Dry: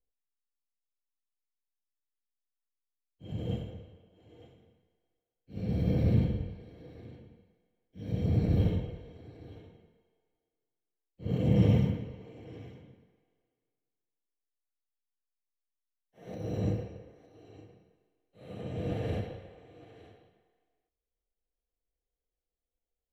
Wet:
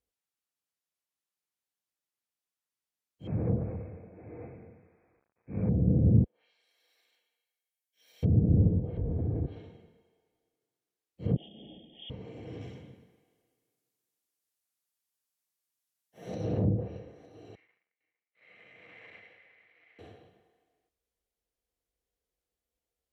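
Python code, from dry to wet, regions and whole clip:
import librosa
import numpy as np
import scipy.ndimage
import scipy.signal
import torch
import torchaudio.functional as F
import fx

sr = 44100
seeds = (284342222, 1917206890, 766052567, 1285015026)

y = fx.chain(x, sr, fx.law_mismatch(coded='mu'),
    fx.brickwall_lowpass(high_hz=2600.0), at=(3.27, 5.7))
y = fx.chain(y, sr, fx.highpass(hz=840.0, slope=12),
    fx.differentiator(), at=(6.24, 8.23))
y = fx.chain(y, sr, fx.lowpass(hz=2200.0, slope=6),
    fx.tilt_eq(slope=-4.0),
    fx.env_flatten(amount_pct=70), at=(8.97, 9.46))
y = fx.chain(y, sr, fx.low_shelf(hz=370.0, db=-4.5),
    fx.freq_invert(carrier_hz=3400),
    fx.brickwall_bandstop(low_hz=870.0, high_hz=1800.0), at=(11.36, 12.1))
y = fx.chain(y, sr, fx.high_shelf(hz=5100.0, db=10.0),
    fx.doppler_dist(depth_ms=0.25), at=(12.61, 17.0))
y = fx.chain(y, sr, fx.leveller(passes=2),
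    fx.bandpass_q(hz=2100.0, q=10.0),
    fx.echo_single(ms=453, db=-18.0), at=(17.55, 19.99))
y = fx.env_lowpass_down(y, sr, base_hz=390.0, full_db=-25.5)
y = scipy.signal.sosfilt(scipy.signal.butter(2, 57.0, 'highpass', fs=sr, output='sos'), y)
y = fx.dynamic_eq(y, sr, hz=2000.0, q=1.3, threshold_db=-59.0, ratio=4.0, max_db=-3)
y = y * 10.0 ** (4.0 / 20.0)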